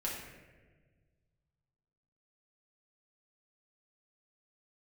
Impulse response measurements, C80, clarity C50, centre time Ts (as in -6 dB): 4.5 dB, 2.0 dB, 60 ms